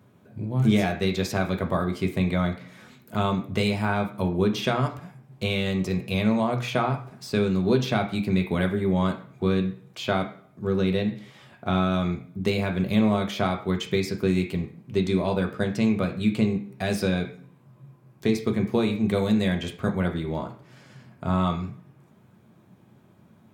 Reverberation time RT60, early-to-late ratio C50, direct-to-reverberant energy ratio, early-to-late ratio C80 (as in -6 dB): 0.55 s, 10.5 dB, 2.5 dB, 14.5 dB